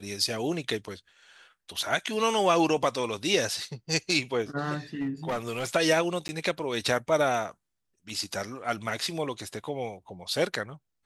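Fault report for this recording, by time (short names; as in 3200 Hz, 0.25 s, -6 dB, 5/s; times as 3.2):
4.95–5.67 clipped -25.5 dBFS
6.28–6.29 gap 10 ms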